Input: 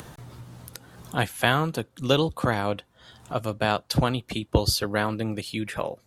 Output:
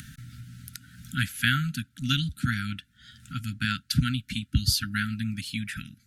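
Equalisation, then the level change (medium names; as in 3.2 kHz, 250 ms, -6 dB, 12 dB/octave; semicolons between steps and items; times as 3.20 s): brick-wall FIR band-stop 280–1300 Hz; 0.0 dB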